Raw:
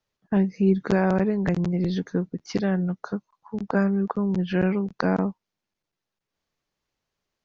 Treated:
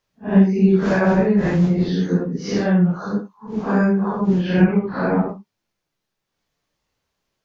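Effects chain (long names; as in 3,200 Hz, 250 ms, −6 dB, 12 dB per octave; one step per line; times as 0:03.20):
random phases in long frames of 200 ms
0:04.64–0:05.29: high-frequency loss of the air 330 metres
level +6.5 dB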